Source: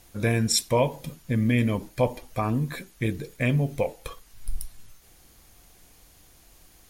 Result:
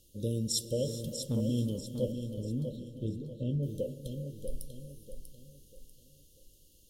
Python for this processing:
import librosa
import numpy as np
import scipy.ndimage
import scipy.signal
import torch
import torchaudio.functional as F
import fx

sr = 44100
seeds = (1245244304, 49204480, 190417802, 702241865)

p1 = fx.brickwall_bandstop(x, sr, low_hz=610.0, high_hz=2700.0)
p2 = fx.leveller(p1, sr, passes=1, at=(0.87, 1.41))
p3 = fx.spacing_loss(p2, sr, db_at_10k=23, at=(2.12, 3.63))
p4 = p3 + fx.echo_feedback(p3, sr, ms=642, feedback_pct=36, wet_db=-8.0, dry=0)
p5 = fx.rev_gated(p4, sr, seeds[0], gate_ms=450, shape='rising', drr_db=11.5)
y = p5 * librosa.db_to_amplitude(-8.5)